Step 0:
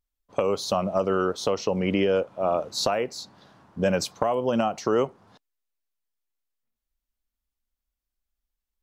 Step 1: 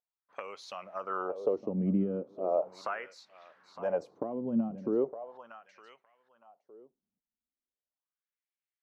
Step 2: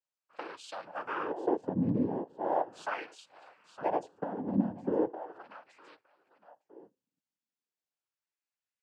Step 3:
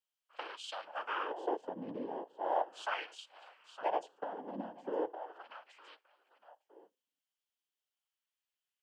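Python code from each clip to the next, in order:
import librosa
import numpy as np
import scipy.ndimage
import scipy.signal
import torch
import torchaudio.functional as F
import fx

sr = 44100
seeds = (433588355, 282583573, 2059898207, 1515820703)

y1 = fx.echo_feedback(x, sr, ms=912, feedback_pct=20, wet_db=-14.5)
y1 = fx.wah_lfo(y1, sr, hz=0.38, low_hz=200.0, high_hz=2300.0, q=2.8)
y1 = fx.dynamic_eq(y1, sr, hz=3300.0, q=1.1, threshold_db=-56.0, ratio=4.0, max_db=-6)
y2 = fx.noise_vocoder(y1, sr, seeds[0], bands=8)
y3 = scipy.signal.sosfilt(scipy.signal.butter(2, 540.0, 'highpass', fs=sr, output='sos'), y2)
y3 = fx.peak_eq(y3, sr, hz=3100.0, db=10.5, octaves=0.29)
y3 = F.gain(torch.from_numpy(y3), -1.0).numpy()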